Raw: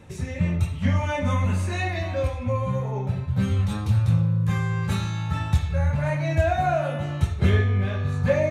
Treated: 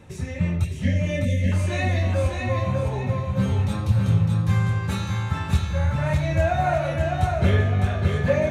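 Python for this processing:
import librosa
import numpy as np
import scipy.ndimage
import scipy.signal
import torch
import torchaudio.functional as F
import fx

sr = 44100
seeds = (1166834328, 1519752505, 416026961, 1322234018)

y = fx.brickwall_bandstop(x, sr, low_hz=670.0, high_hz=1600.0, at=(0.64, 1.52))
y = fx.echo_feedback(y, sr, ms=606, feedback_pct=37, wet_db=-4.0)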